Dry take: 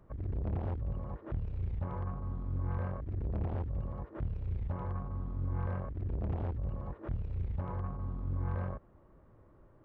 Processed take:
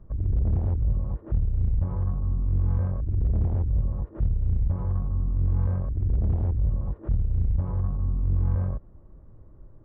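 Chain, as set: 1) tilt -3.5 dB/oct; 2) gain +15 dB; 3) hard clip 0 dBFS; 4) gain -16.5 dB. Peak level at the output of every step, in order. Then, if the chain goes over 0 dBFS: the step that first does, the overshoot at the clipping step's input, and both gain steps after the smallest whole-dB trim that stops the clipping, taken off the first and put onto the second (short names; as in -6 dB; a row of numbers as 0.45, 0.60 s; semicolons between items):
-11.5, +3.5, 0.0, -16.5 dBFS; step 2, 3.5 dB; step 2 +11 dB, step 4 -12.5 dB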